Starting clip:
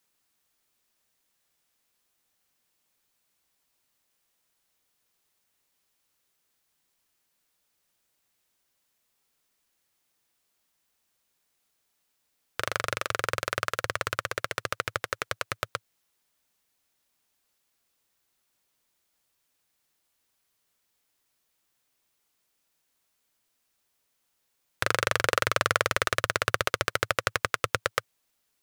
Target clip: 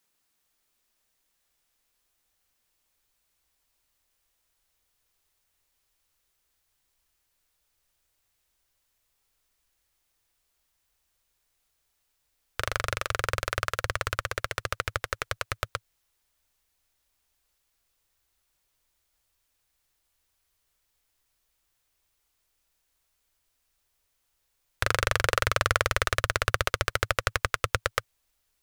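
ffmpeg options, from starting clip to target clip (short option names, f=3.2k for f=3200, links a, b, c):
-af "asubboost=boost=8:cutoff=65"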